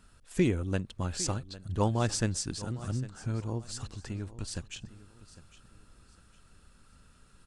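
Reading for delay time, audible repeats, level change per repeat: 0.805 s, 2, -10.0 dB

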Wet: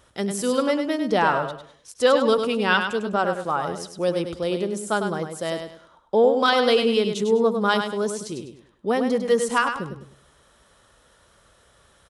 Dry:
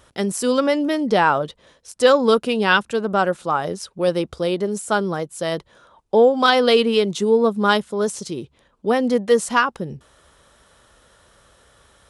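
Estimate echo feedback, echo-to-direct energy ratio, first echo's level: 30%, -6.5 dB, -7.0 dB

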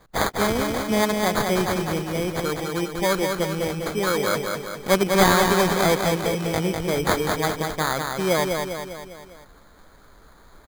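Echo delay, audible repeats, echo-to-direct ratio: 0.2 s, 5, -3.0 dB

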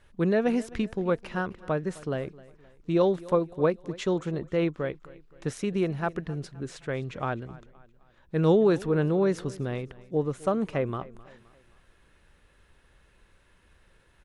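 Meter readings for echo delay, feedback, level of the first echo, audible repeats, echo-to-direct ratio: 0.26 s, 44%, -20.5 dB, 3, -19.5 dB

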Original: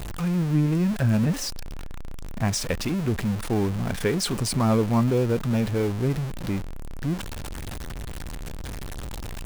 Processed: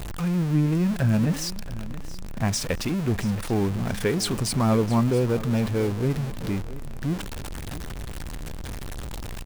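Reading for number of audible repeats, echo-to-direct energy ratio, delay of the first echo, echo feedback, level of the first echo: 2, -15.5 dB, 0.674 s, 33%, -16.0 dB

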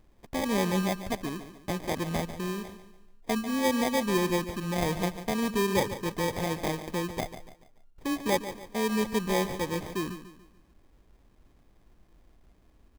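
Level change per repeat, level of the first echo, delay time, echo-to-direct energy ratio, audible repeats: -8.0 dB, -12.0 dB, 0.144 s, -11.5 dB, 3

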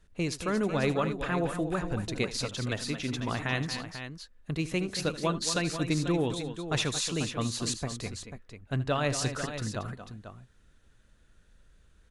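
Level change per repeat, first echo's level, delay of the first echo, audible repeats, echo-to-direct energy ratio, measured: no steady repeat, -16.0 dB, 77 ms, 3, -6.5 dB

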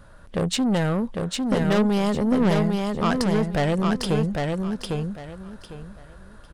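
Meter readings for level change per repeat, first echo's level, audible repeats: -12.5 dB, -3.5 dB, 3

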